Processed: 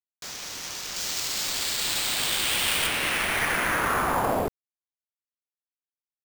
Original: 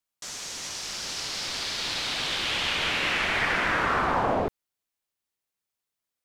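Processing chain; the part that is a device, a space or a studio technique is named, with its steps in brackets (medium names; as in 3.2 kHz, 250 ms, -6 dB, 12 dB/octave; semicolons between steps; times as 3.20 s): early companding sampler (sample-rate reducer 12 kHz, jitter 0%; companded quantiser 6-bit); 0.96–2.87 s: treble shelf 4 kHz +6 dB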